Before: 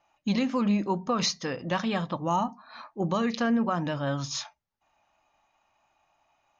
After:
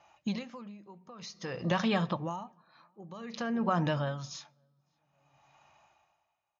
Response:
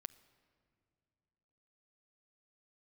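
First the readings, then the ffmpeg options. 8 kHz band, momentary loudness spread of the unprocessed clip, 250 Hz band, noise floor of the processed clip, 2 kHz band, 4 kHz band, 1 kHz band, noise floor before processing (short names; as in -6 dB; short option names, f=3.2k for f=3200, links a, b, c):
n/a, 8 LU, -7.0 dB, -80 dBFS, -4.0 dB, -8.5 dB, -6.5 dB, -74 dBFS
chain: -filter_complex "[0:a]lowshelf=f=120:g=5,asplit=2[a][b];[1:a]atrim=start_sample=2205[c];[b][c]afir=irnorm=-1:irlink=0,volume=-3dB[d];[a][d]amix=inputs=2:normalize=0,aresample=16000,aresample=44100,acompressor=threshold=-28dB:ratio=6,highpass=75,equalizer=f=270:w=7.7:g=-14,asplit=2[e][f];[f]adelay=556,lowpass=f=1.3k:p=1,volume=-22.5dB,asplit=2[g][h];[h]adelay=556,lowpass=f=1.3k:p=1,volume=0.28[i];[e][g][i]amix=inputs=3:normalize=0,aeval=exprs='val(0)*pow(10,-24*(0.5-0.5*cos(2*PI*0.53*n/s))/20)':c=same,volume=4.5dB"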